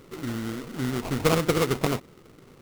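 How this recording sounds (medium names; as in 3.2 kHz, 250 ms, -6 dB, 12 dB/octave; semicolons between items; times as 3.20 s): aliases and images of a low sample rate 1.7 kHz, jitter 20%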